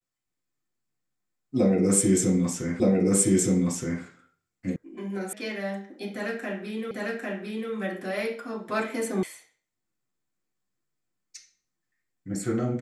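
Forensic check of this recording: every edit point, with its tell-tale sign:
0:02.80: the same again, the last 1.22 s
0:04.76: cut off before it has died away
0:05.33: cut off before it has died away
0:06.91: the same again, the last 0.8 s
0:09.23: cut off before it has died away

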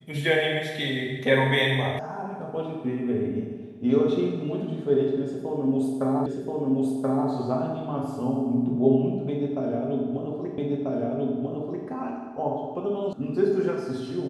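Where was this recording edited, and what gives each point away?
0:01.99: cut off before it has died away
0:06.26: the same again, the last 1.03 s
0:10.58: the same again, the last 1.29 s
0:13.13: cut off before it has died away

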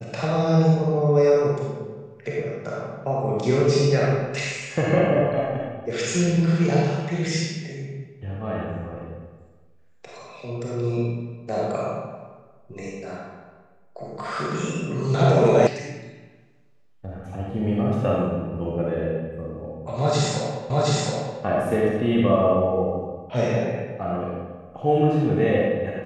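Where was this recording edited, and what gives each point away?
0:15.67: cut off before it has died away
0:20.70: the same again, the last 0.72 s

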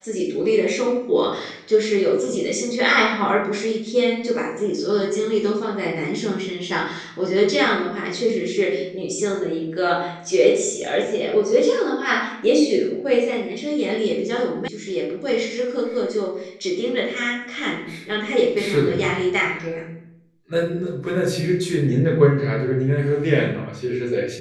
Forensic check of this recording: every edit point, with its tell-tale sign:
0:14.68: cut off before it has died away

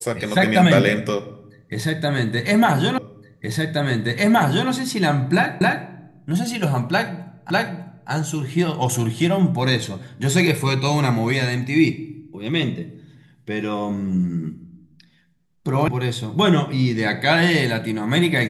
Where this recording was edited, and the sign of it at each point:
0:02.98: the same again, the last 1.72 s
0:05.61: the same again, the last 0.27 s
0:07.50: the same again, the last 0.6 s
0:15.88: cut off before it has died away

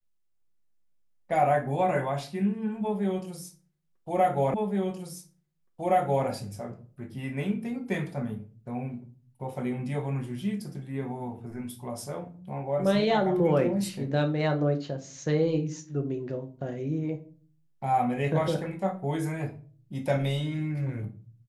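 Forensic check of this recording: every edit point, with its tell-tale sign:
0:04.54: the same again, the last 1.72 s

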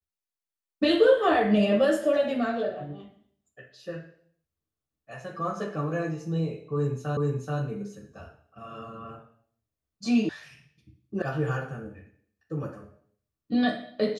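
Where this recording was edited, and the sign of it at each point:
0:07.17: the same again, the last 0.43 s
0:10.29: cut off before it has died away
0:11.22: cut off before it has died away

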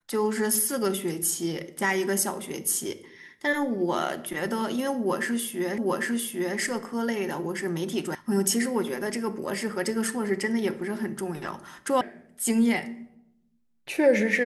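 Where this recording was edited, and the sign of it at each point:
0:05.78: the same again, the last 0.8 s
0:08.15: cut off before it has died away
0:12.01: cut off before it has died away

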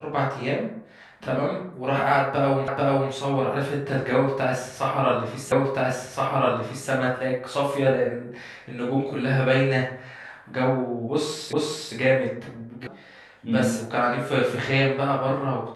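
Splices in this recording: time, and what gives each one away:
0:02.68: the same again, the last 0.44 s
0:05.52: the same again, the last 1.37 s
0:11.53: the same again, the last 0.41 s
0:12.87: cut off before it has died away

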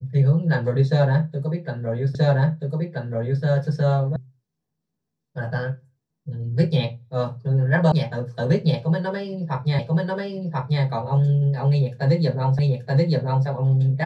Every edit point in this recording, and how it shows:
0:02.15: the same again, the last 1.28 s
0:04.16: cut off before it has died away
0:07.92: cut off before it has died away
0:09.79: the same again, the last 1.04 s
0:12.59: the same again, the last 0.88 s

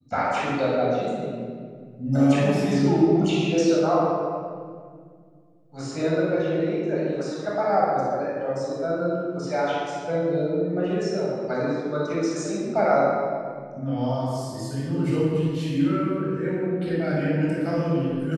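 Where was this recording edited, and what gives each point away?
no edit point found

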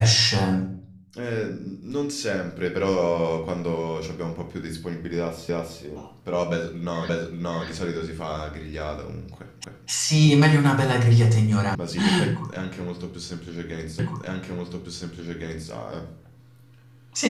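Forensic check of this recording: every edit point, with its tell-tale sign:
0:05.49: the same again, the last 0.32 s
0:07.09: the same again, the last 0.58 s
0:09.64: the same again, the last 0.26 s
0:11.75: cut off before it has died away
0:13.99: the same again, the last 1.71 s

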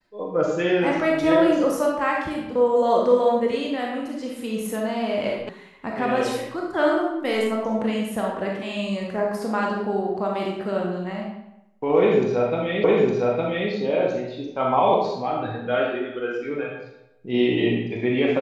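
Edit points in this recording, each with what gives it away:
0:05.49: cut off before it has died away
0:12.84: the same again, the last 0.86 s

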